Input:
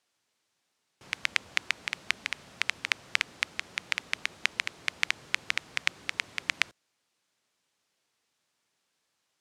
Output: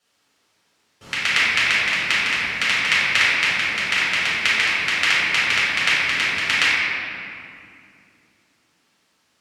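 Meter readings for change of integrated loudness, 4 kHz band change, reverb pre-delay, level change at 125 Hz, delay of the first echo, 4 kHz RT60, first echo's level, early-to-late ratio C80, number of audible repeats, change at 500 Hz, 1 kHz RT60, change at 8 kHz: +13.5 dB, +13.0 dB, 3 ms, +16.0 dB, no echo, 1.5 s, no echo, -1.0 dB, no echo, +14.5 dB, 2.3 s, +11.0 dB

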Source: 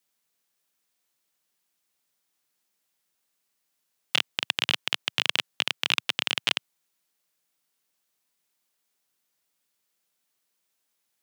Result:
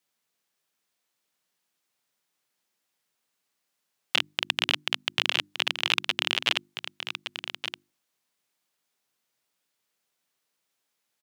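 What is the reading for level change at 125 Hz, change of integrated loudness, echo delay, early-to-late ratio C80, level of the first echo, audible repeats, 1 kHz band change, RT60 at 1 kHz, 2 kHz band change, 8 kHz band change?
+0.5 dB, -1.0 dB, 1168 ms, no reverb, -9.5 dB, 1, +1.5 dB, no reverb, +1.0 dB, -2.0 dB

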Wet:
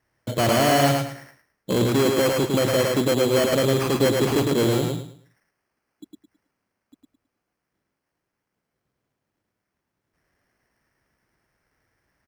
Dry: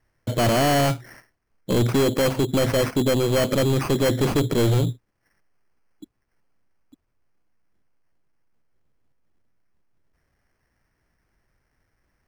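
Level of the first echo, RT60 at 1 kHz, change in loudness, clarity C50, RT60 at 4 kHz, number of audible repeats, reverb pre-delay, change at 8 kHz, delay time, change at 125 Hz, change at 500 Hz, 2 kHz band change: -3.0 dB, no reverb, +0.5 dB, no reverb, no reverb, 3, no reverb, +2.0 dB, 107 ms, -3.0 dB, +1.5 dB, +2.0 dB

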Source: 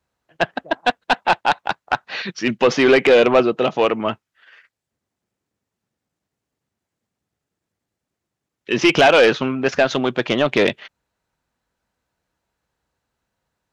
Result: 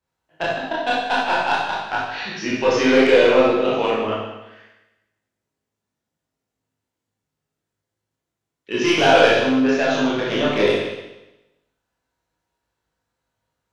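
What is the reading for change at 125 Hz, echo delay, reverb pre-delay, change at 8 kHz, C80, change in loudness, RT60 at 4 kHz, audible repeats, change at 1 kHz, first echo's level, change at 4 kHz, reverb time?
-2.0 dB, no echo, 19 ms, no reading, 2.5 dB, -1.0 dB, 0.95 s, no echo, -1.0 dB, no echo, -0.5 dB, 1.0 s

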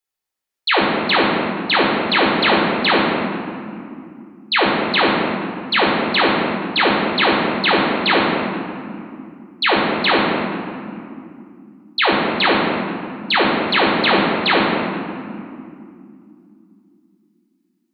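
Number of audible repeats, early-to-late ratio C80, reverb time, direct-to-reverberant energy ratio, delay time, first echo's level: no echo, 1.0 dB, 2.6 s, -4.0 dB, no echo, no echo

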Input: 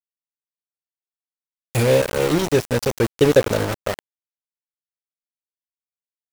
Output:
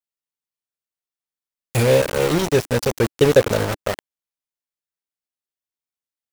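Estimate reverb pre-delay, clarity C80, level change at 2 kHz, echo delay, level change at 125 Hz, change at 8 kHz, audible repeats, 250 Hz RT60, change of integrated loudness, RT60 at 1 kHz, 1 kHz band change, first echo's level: no reverb, no reverb, +1.0 dB, no echo, +1.0 dB, +1.0 dB, no echo, no reverb, +0.5 dB, no reverb, +1.0 dB, no echo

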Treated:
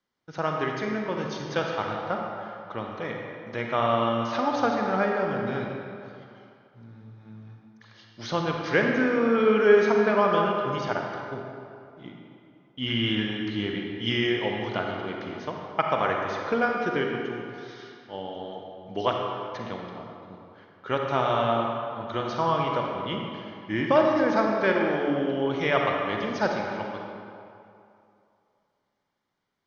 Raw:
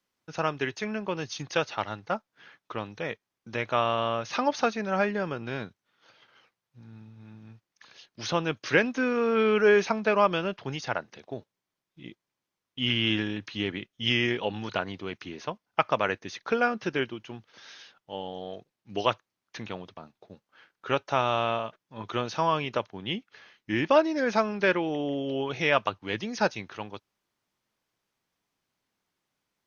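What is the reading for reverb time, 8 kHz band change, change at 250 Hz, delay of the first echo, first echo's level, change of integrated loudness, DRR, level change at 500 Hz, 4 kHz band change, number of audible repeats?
2.6 s, no reading, +3.5 dB, no echo, no echo, +2.0 dB, 0.0 dB, +3.0 dB, -1.0 dB, no echo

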